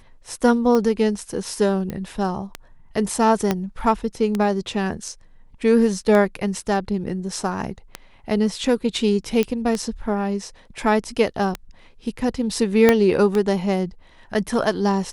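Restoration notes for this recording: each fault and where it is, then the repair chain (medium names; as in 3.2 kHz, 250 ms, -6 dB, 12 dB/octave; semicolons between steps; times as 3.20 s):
tick 33 1/3 rpm -10 dBFS
1.90 s: pop -16 dBFS
3.51 s: pop -6 dBFS
9.43 s: pop -9 dBFS
12.89 s: pop -1 dBFS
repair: de-click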